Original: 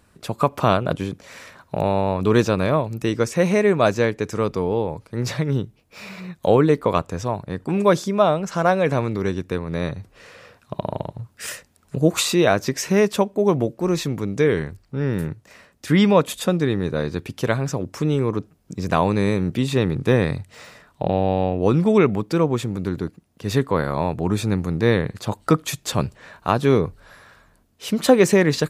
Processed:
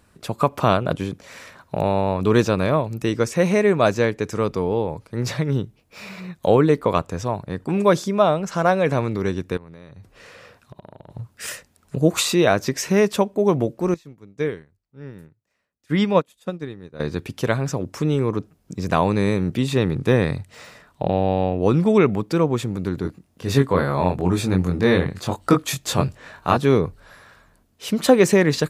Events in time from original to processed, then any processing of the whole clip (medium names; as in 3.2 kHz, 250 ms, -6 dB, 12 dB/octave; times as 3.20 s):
9.57–11.10 s: compression 12:1, threshold -37 dBFS
13.94–17.00 s: upward expansion 2.5:1, over -29 dBFS
23.02–26.57 s: doubling 22 ms -3 dB